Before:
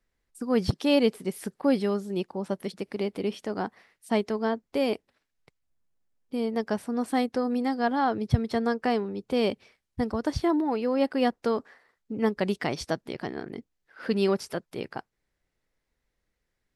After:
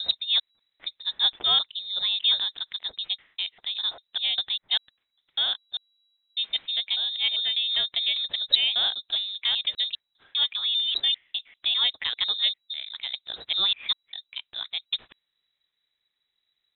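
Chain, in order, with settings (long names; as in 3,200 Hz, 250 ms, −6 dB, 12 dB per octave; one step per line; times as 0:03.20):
slices reordered back to front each 199 ms, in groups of 4
pitch vibrato 5.5 Hz 9.3 cents
voice inversion scrambler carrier 3,900 Hz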